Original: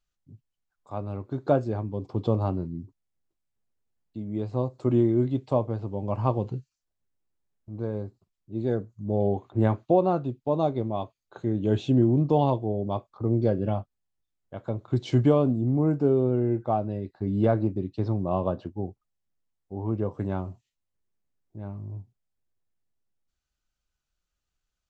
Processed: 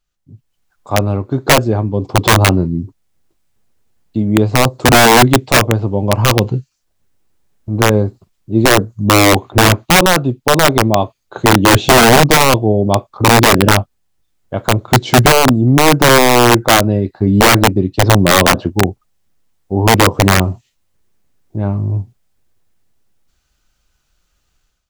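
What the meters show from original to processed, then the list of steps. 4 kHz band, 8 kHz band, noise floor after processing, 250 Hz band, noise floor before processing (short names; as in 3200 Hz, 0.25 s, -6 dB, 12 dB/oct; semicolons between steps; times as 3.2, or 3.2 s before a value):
+34.0 dB, n/a, -66 dBFS, +12.5 dB, -83 dBFS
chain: AGC gain up to 13 dB; wrapped overs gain 8.5 dB; gain +7 dB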